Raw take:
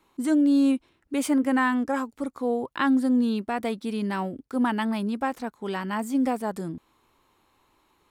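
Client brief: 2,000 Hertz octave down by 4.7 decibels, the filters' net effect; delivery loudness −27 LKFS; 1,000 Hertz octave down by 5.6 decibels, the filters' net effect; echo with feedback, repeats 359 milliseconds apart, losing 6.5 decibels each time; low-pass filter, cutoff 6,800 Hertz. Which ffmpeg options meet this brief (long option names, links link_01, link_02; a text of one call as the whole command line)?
ffmpeg -i in.wav -af "lowpass=6800,equalizer=frequency=1000:width_type=o:gain=-6.5,equalizer=frequency=2000:width_type=o:gain=-3.5,aecho=1:1:359|718|1077|1436|1795|2154:0.473|0.222|0.105|0.0491|0.0231|0.0109,volume=-1.5dB" out.wav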